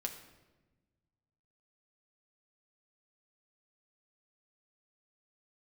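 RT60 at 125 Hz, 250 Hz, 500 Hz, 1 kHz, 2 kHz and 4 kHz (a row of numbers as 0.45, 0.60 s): 2.3, 1.8, 1.3, 1.0, 0.95, 0.80 s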